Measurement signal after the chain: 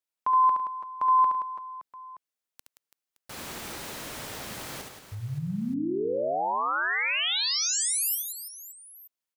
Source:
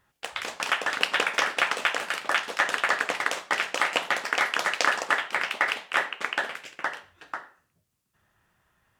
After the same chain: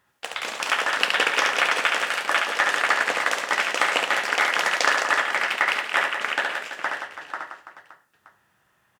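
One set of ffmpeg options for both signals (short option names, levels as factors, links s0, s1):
-af "highpass=f=190:p=1,aecho=1:1:70|175|332.5|568.8|923.1:0.631|0.398|0.251|0.158|0.1,volume=1.26"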